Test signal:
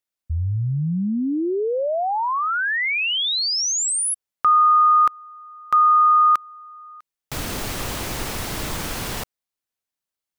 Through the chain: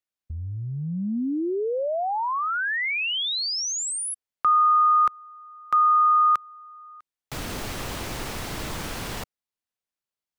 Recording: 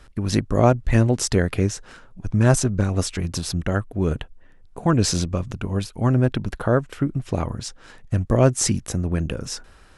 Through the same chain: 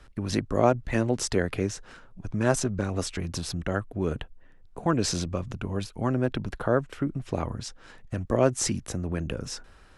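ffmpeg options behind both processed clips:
ffmpeg -i in.wav -filter_complex "[0:a]highshelf=frequency=7200:gain=-5.5,acrossover=split=220|4000[link_01][link_02][link_03];[link_01]acompressor=threshold=-28dB:ratio=6:attack=6:release=47:knee=1:detection=peak[link_04];[link_04][link_02][link_03]amix=inputs=3:normalize=0,volume=-3.5dB" out.wav

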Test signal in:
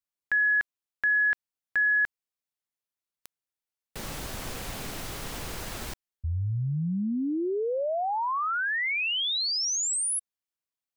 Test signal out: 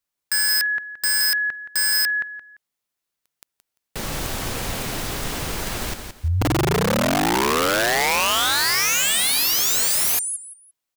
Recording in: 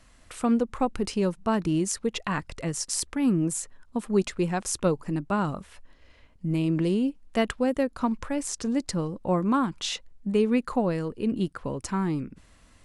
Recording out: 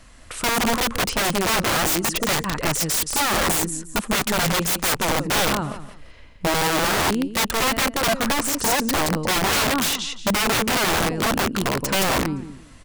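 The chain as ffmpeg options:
ffmpeg -i in.wav -af "aecho=1:1:172|344|516:0.447|0.107|0.0257,aeval=exprs='(mod(15.8*val(0)+1,2)-1)/15.8':channel_layout=same,volume=8.5dB" out.wav

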